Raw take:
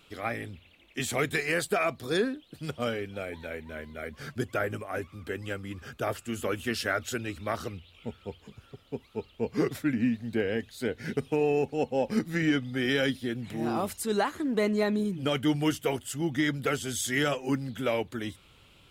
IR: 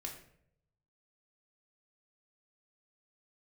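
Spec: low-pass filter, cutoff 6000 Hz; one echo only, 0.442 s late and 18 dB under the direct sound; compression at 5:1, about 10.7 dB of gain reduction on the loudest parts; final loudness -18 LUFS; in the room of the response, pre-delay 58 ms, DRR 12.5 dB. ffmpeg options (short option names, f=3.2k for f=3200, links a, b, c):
-filter_complex "[0:a]lowpass=6k,acompressor=threshold=-34dB:ratio=5,aecho=1:1:442:0.126,asplit=2[a][b];[1:a]atrim=start_sample=2205,adelay=58[c];[b][c]afir=irnorm=-1:irlink=0,volume=-10.5dB[d];[a][d]amix=inputs=2:normalize=0,volume=20.5dB"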